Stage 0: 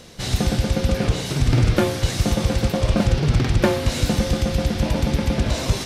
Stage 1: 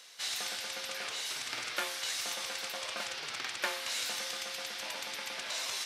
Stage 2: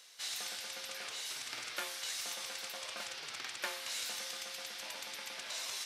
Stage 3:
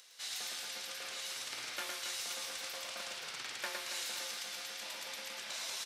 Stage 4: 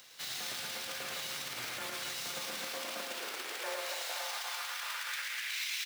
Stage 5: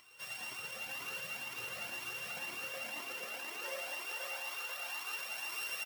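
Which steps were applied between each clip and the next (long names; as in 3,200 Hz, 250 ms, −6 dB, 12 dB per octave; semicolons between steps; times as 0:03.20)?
high-pass filter 1,300 Hz 12 dB per octave; level −5.5 dB
high-shelf EQ 5,200 Hz +4.5 dB; level −6 dB
upward compression, threshold −58 dBFS; on a send: reverse bouncing-ball delay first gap 110 ms, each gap 1.5×, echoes 5; on the sum: level −2 dB
each half-wave held at its own peak; brickwall limiter −33 dBFS, peak gain reduction 10.5 dB; high-pass filter sweep 130 Hz → 2,200 Hz, 0:02.18–0:05.61
samples sorted by size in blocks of 16 samples; single-tap delay 598 ms −4.5 dB; flanger whose copies keep moving one way rising 2 Hz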